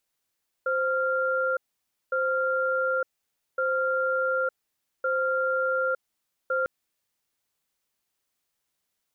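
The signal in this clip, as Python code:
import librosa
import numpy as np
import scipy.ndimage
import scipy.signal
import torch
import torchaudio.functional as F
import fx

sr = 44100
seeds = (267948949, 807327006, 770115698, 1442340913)

y = fx.cadence(sr, length_s=6.0, low_hz=522.0, high_hz=1390.0, on_s=0.91, off_s=0.55, level_db=-25.5)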